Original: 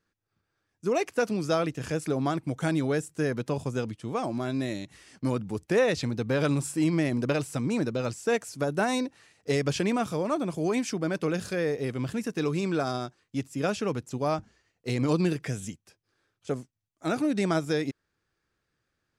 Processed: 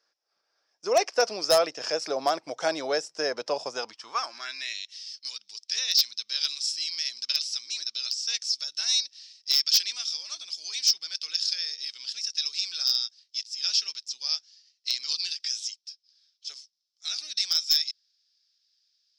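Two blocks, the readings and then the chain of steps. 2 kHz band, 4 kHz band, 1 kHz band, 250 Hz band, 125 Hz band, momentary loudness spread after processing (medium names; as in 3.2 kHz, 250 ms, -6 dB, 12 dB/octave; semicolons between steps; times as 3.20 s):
-2.5 dB, +16.5 dB, -0.5 dB, under -15 dB, under -25 dB, 13 LU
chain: high-pass sweep 620 Hz -> 3.8 kHz, 3.66–5.01 s; resonant low-pass 5.3 kHz, resonance Q 10; wavefolder -12.5 dBFS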